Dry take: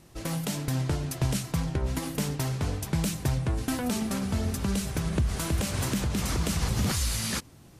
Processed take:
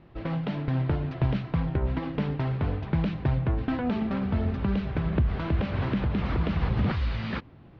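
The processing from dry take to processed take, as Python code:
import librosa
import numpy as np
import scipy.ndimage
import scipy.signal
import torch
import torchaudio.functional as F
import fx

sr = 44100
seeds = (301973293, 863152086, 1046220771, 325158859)

y = scipy.signal.sosfilt(scipy.signal.bessel(8, 2100.0, 'lowpass', norm='mag', fs=sr, output='sos'), x)
y = F.gain(torch.from_numpy(y), 2.0).numpy()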